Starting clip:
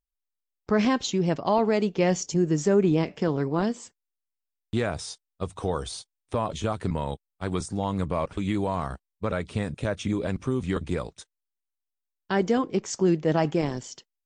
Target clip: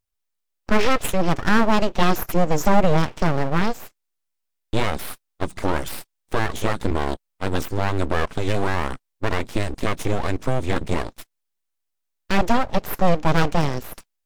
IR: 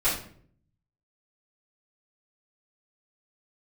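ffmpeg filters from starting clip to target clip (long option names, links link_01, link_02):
-af "aeval=exprs='abs(val(0))':channel_layout=same,volume=7.5dB"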